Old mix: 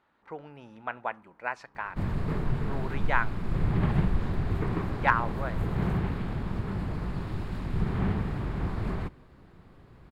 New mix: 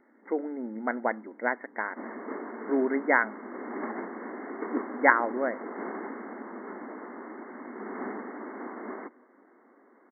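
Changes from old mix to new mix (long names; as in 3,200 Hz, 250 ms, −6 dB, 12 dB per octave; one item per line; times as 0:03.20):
speech: remove resonant band-pass 1,100 Hz, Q 1.8
master: add linear-phase brick-wall band-pass 220–2,200 Hz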